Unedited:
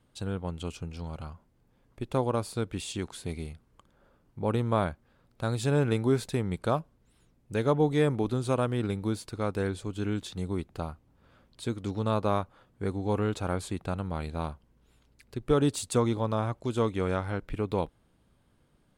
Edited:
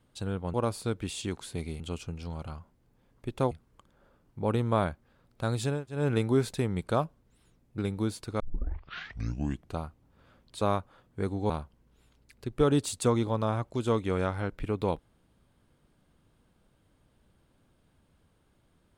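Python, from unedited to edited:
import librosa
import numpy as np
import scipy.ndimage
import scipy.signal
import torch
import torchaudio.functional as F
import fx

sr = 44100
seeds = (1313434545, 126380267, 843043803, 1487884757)

y = fx.edit(x, sr, fx.move(start_s=2.25, length_s=1.26, to_s=0.54),
    fx.insert_room_tone(at_s=5.74, length_s=0.25, crossfade_s=0.24),
    fx.cut(start_s=7.53, length_s=1.3),
    fx.tape_start(start_s=9.45, length_s=1.39),
    fx.cut(start_s=11.66, length_s=0.58),
    fx.cut(start_s=13.13, length_s=1.27), tone=tone)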